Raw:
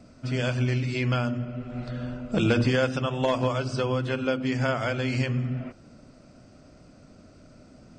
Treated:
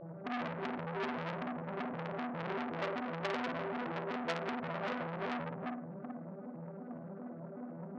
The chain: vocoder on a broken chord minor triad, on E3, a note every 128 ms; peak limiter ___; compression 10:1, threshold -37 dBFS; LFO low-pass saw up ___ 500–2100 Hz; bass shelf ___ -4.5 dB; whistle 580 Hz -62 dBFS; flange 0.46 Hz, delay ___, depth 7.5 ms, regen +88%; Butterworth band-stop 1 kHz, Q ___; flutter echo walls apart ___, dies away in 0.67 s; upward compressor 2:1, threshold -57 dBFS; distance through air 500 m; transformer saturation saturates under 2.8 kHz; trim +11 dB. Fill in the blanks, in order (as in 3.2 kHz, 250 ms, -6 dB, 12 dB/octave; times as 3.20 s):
-16 dBFS, 9.6 Hz, 170 Hz, 5.7 ms, 4.1, 9.2 m